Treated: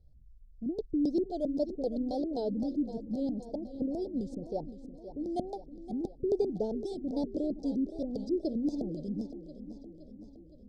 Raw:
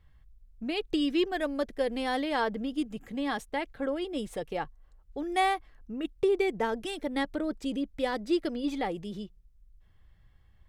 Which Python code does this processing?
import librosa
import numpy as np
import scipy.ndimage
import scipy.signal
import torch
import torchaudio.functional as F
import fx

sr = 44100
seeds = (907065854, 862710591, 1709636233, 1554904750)

y = fx.filter_lfo_lowpass(x, sr, shape='square', hz=3.8, low_hz=240.0, high_hz=3800.0, q=1.6)
y = scipy.signal.sosfilt(scipy.signal.ellip(3, 1.0, 40, [650.0, 5000.0], 'bandstop', fs=sr, output='sos'), y)
y = fx.echo_feedback(y, sr, ms=516, feedback_pct=59, wet_db=-12.5)
y = fx.wow_flutter(y, sr, seeds[0], rate_hz=2.1, depth_cents=79.0)